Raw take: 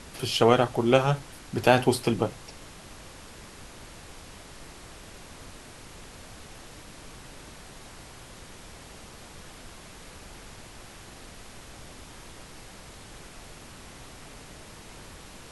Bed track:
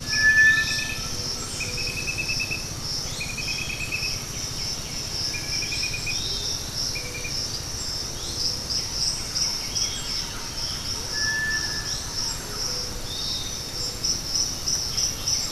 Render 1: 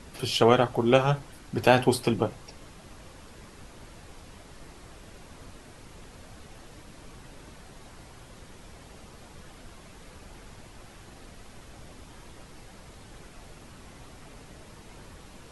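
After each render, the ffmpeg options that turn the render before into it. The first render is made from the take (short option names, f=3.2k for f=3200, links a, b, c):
-af "afftdn=nr=6:nf=-47"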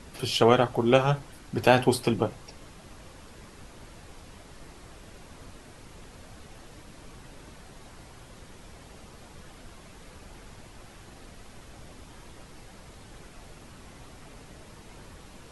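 -af anull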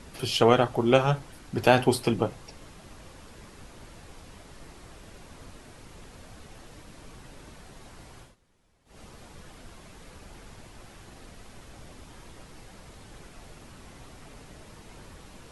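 -filter_complex "[0:a]asplit=3[a][b][c];[a]atrim=end=8.36,asetpts=PTS-STARTPTS,afade=t=out:st=8.2:d=0.16:silence=0.0944061[d];[b]atrim=start=8.36:end=8.85,asetpts=PTS-STARTPTS,volume=-20.5dB[e];[c]atrim=start=8.85,asetpts=PTS-STARTPTS,afade=t=in:d=0.16:silence=0.0944061[f];[d][e][f]concat=n=3:v=0:a=1"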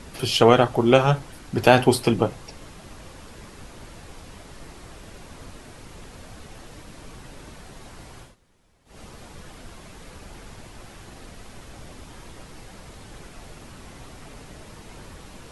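-af "volume=5dB,alimiter=limit=-1dB:level=0:latency=1"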